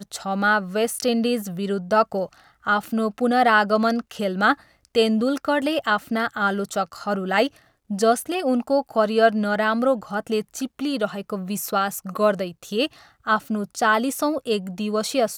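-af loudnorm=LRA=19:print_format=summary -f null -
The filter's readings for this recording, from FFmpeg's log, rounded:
Input Integrated:    -22.7 LUFS
Input True Peak:      -5.5 dBTP
Input LRA:             2.4 LU
Input Threshold:     -32.8 LUFS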